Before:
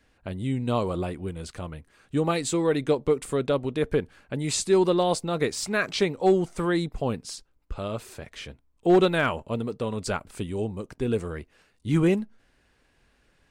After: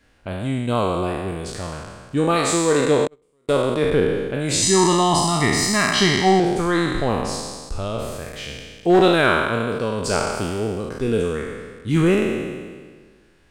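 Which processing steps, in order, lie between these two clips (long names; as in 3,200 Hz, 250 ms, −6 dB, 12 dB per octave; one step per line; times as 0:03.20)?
peak hold with a decay on every bin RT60 1.62 s
0:03.07–0:03.49: noise gate −13 dBFS, range −43 dB
0:04.62–0:06.40: comb filter 1 ms, depth 99%
level +3 dB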